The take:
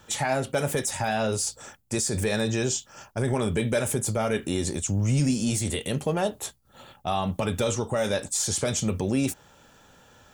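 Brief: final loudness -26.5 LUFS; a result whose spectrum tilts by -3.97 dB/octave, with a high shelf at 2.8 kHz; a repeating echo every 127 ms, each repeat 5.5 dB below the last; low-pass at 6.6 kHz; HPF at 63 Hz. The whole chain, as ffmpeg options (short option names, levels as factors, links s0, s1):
-af "highpass=63,lowpass=6600,highshelf=f=2800:g=6,aecho=1:1:127|254|381|508|635|762|889:0.531|0.281|0.149|0.079|0.0419|0.0222|0.0118,volume=0.841"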